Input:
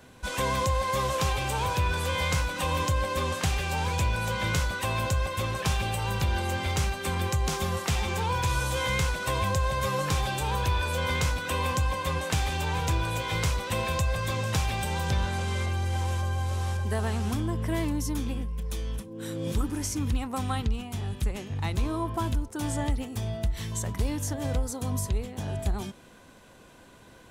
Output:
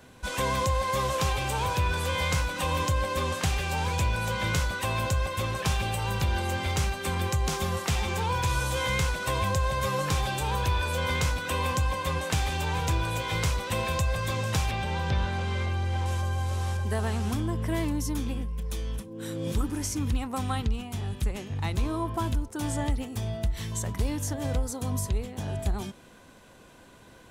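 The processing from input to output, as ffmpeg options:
ffmpeg -i in.wav -filter_complex "[0:a]asettb=1/sr,asplit=3[link_01][link_02][link_03];[link_01]atrim=end=14.714[link_04];[link_02]atrim=start=14.71:end=16.06,asetpts=PTS-STARTPTS,afade=type=in:duration=0.004:curve=qsin,afade=type=out:start_time=1.346:duration=0.004:curve=qsin,acrossover=split=5000[link_05][link_06];[link_06]acompressor=threshold=-59dB:ratio=4:attack=1:release=60[link_07];[link_05][link_07]amix=inputs=2:normalize=0[link_08];[link_03]atrim=start=16.056[link_09];[link_04][link_08]acrossfade=duration=0.004:curve1=hsin:curve2=qsin[link_10];[link_10][link_09]acrossfade=duration=0.004:curve1=qsin:curve2=hsin" out.wav

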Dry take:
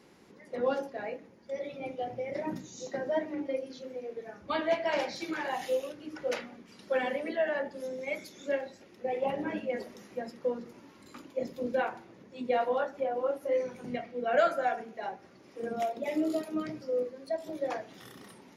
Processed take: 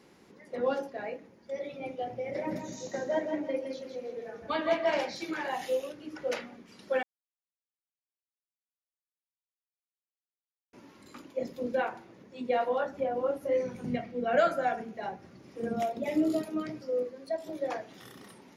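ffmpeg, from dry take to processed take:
ffmpeg -i in.wav -filter_complex "[0:a]asettb=1/sr,asplit=3[link_01][link_02][link_03];[link_01]atrim=end=2.084[link_04];[link_02]atrim=start=2.08:end=4.97,asetpts=PTS-STARTPTS,afade=type=in:duration=0.004:curve=qsin,afade=type=out:start_time=2.886:duration=0.004:curve=qsin,aecho=1:1:163|326|489|652:0.501|0.175|0.0614|0.0215,atrim=end_sample=127449[link_05];[link_03]atrim=start=4.966[link_06];[link_04][link_05]acrossfade=duration=0.004:curve1=hsin:curve2=qsin[link_07];[link_07][link_06]acrossfade=duration=0.004:curve1=qsin:curve2=hsin,asettb=1/sr,asplit=3[link_08][link_09][link_10];[link_08]atrim=end=12.854[link_11];[link_09]atrim=start=12.85:end=16.5,asetpts=PTS-STARTPTS,afade=type=in:duration=0.004:curve=qsin,afade=type=out:start_time=3.646:duration=0.004:curve=qsin,bass=frequency=250:gain=10,treble=frequency=4000:gain=1[link_12];[link_10]atrim=start=16.496[link_13];[link_11][link_12]acrossfade=duration=0.004:curve1=hsin:curve2=qsin[link_14];[link_14][link_13]acrossfade=duration=0.004:curve1=qsin:curve2=hsin,asplit=3[link_15][link_16][link_17];[link_15]atrim=end=7.03,asetpts=PTS-STARTPTS,afade=type=out:start_time=7.026:duration=0.004:curve=hsin[link_18];[link_16]atrim=start=7.03:end=10.73,asetpts=PTS-STARTPTS,volume=0[link_19];[link_17]atrim=start=10.73,asetpts=PTS-STARTPTS,afade=type=in:duration=0.004:curve=hsin[link_20];[link_18][link_19][link_20]concat=n=3:v=0:a=1" out.wav

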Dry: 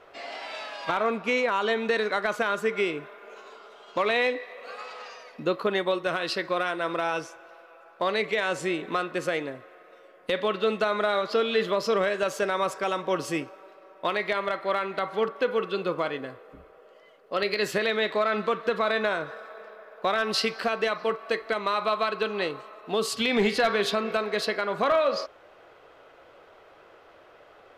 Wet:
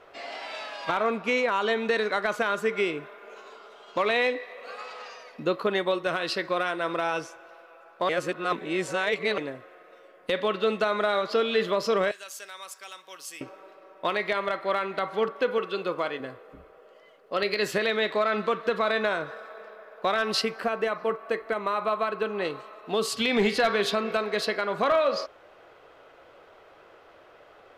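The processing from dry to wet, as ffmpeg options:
ffmpeg -i in.wav -filter_complex "[0:a]asettb=1/sr,asplit=3[link_01][link_02][link_03];[link_01]atrim=end=12.114[link_04];[link_02]atrim=start=12.11:end=13.41,asetpts=PTS-STARTPTS,afade=type=in:duration=0.004:curve=qsin,afade=type=out:start_time=1.296:duration=0.004:curve=qsin,aderivative[link_05];[link_03]atrim=start=13.406[link_06];[link_04][link_05]acrossfade=duration=0.004:curve1=hsin:curve2=qsin[link_07];[link_07][link_06]acrossfade=duration=0.004:curve1=qsin:curve2=hsin,asettb=1/sr,asplit=3[link_08][link_09][link_10];[link_08]atrim=end=15.584[link_11];[link_09]atrim=start=15.58:end=16.2,asetpts=PTS-STARTPTS,afade=type=in:duration=0.004:curve=qsin,afade=type=out:start_time=0.616:duration=0.004:curve=qsin,lowshelf=frequency=180:gain=-10[link_12];[link_10]atrim=start=16.196[link_13];[link_11][link_12]acrossfade=duration=0.004:curve1=hsin:curve2=qsin[link_14];[link_14][link_13]acrossfade=duration=0.004:curve1=qsin:curve2=hsin,asettb=1/sr,asplit=3[link_15][link_16][link_17];[link_15]atrim=end=20.414[link_18];[link_16]atrim=start=20.41:end=22.45,asetpts=PTS-STARTPTS,afade=type=in:duration=0.004:curve=qsin,afade=type=out:start_time=2.036:duration=0.004:curve=qsin,equalizer=frequency=4400:width=0.85:gain=-10.5[link_19];[link_17]atrim=start=22.446[link_20];[link_18][link_19]acrossfade=duration=0.004:curve1=hsin:curve2=qsin[link_21];[link_21][link_20]acrossfade=duration=0.004:curve1=qsin:curve2=hsin,asplit=3[link_22][link_23][link_24];[link_22]atrim=end=8.092[link_25];[link_23]atrim=start=8.088:end=9.382,asetpts=PTS-STARTPTS,areverse[link_26];[link_24]atrim=start=9.378[link_27];[link_25][link_26]acrossfade=duration=0.004:curve1=hsin:curve2=hsin[link_28];[link_28][link_27]acrossfade=duration=0.004:curve1=hsin:curve2=hsin" out.wav

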